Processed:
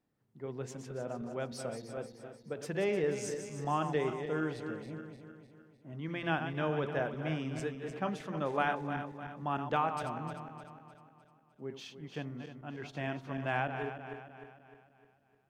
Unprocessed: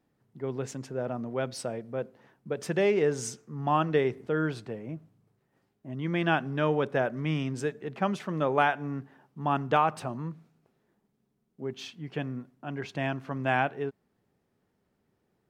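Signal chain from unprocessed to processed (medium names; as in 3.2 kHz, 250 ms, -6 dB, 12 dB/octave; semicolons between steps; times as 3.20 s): backward echo that repeats 152 ms, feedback 68%, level -8 dB; de-hum 85.93 Hz, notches 11; trim -7 dB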